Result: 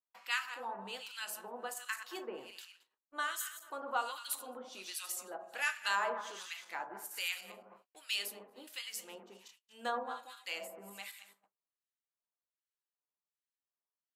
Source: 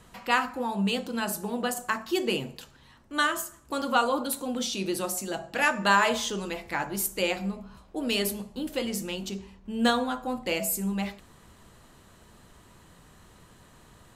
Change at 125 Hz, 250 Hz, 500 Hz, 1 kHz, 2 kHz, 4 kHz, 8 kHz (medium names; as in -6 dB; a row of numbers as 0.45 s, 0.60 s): under -25 dB, -25.5 dB, -15.0 dB, -11.5 dB, -9.5 dB, -9.5 dB, -10.0 dB